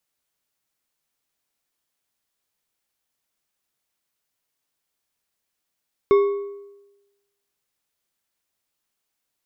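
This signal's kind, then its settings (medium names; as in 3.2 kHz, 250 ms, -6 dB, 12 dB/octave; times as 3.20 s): metal hit bar, lowest mode 402 Hz, decay 1.05 s, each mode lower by 11 dB, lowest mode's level -10 dB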